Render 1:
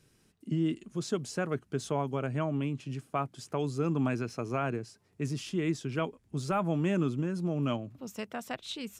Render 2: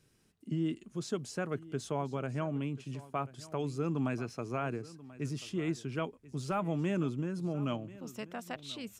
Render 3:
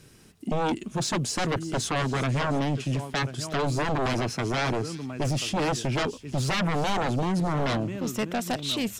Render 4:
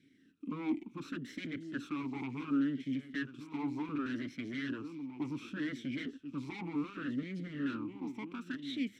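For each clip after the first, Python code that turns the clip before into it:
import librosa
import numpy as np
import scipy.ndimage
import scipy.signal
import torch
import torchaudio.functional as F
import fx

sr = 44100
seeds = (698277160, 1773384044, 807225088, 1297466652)

y1 = x + 10.0 ** (-18.5 / 20.0) * np.pad(x, (int(1036 * sr / 1000.0), 0))[:len(x)]
y1 = y1 * librosa.db_to_amplitude(-3.5)
y2 = fx.fold_sine(y1, sr, drive_db=12, ceiling_db=-22.0)
y2 = fx.echo_wet_highpass(y2, sr, ms=354, feedback_pct=47, hz=3100.0, wet_db=-14.0)
y3 = fx.lower_of_two(y2, sr, delay_ms=0.52)
y3 = fx.vowel_sweep(y3, sr, vowels='i-u', hz=0.68)
y3 = y3 * librosa.db_to_amplitude(1.0)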